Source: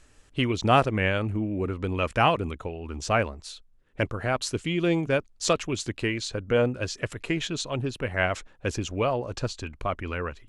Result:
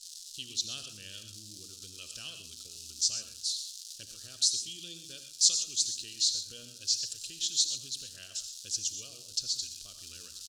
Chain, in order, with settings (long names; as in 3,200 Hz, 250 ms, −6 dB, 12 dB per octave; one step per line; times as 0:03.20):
on a send: single-tap delay 84 ms −15 dB
on the sum: surface crackle 510 per second −35 dBFS
in parallel at +3 dB: downward compressor, threshold −30 dBFS, peak gain reduction 14.5 dB
on the sum: inverse Chebyshev high-pass filter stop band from 2,300 Hz, stop band 40 dB
high-frequency loss of the air 69 metres
slap from a distant wall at 43 metres, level −28 dB
reverb whose tail is shaped and stops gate 150 ms rising, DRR 8 dB
level +7.5 dB